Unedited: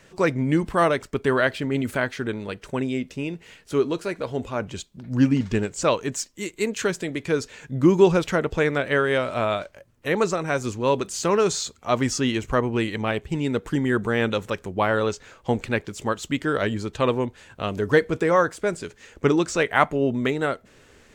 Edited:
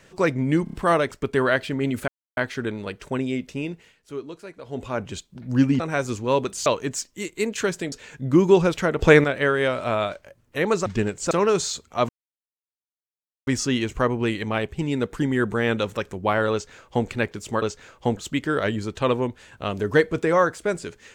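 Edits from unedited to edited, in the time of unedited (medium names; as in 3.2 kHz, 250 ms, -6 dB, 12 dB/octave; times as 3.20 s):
0.64 s: stutter 0.03 s, 4 plays
1.99 s: insert silence 0.29 s
3.33–4.47 s: dip -11.5 dB, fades 0.21 s
5.42–5.87 s: swap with 10.36–11.22 s
7.13–7.42 s: delete
8.49–8.74 s: gain +8.5 dB
12.00 s: insert silence 1.38 s
15.05–15.60 s: copy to 16.15 s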